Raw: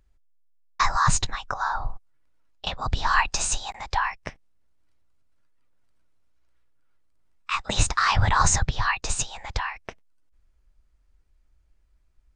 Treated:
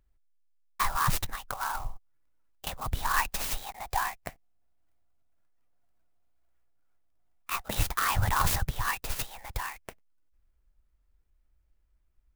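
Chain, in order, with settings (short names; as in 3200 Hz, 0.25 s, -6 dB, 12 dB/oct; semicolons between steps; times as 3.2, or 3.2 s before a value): 3.76–7.66 bell 710 Hz +12.5 dB 0.22 oct; clock jitter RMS 0.047 ms; gain -6 dB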